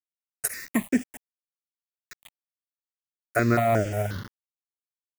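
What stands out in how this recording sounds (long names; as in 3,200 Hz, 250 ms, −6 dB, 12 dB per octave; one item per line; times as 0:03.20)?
a quantiser's noise floor 6 bits, dither none
notches that jump at a steady rate 5.6 Hz 710–4,000 Hz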